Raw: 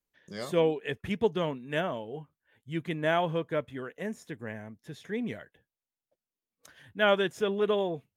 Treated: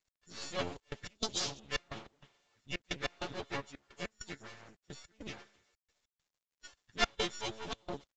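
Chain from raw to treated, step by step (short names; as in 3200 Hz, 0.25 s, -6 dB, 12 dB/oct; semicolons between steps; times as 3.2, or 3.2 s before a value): frequency quantiser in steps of 4 st; 3.67–4.69 de-hum 72.96 Hz, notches 29; spectral gate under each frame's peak -20 dB strong; bell 5900 Hz +14.5 dB 1.2 oct; resonator 210 Hz, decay 0.54 s, harmonics all, mix 70%; thinning echo 96 ms, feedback 73%, high-pass 700 Hz, level -20 dB; half-wave rectifier; step gate "x..xxxxxxx..x" 196 bpm -24 dB; harmonic-percussive split harmonic -17 dB; 1.15–1.6 resonant high shelf 3400 Hz +13.5 dB, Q 1.5; gain +9.5 dB; µ-law 128 kbps 16000 Hz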